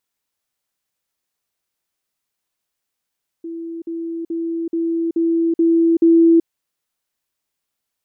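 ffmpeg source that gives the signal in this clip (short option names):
-f lavfi -i "aevalsrc='pow(10,(-26+3*floor(t/0.43))/20)*sin(2*PI*332*t)*clip(min(mod(t,0.43),0.38-mod(t,0.43))/0.005,0,1)':d=3.01:s=44100"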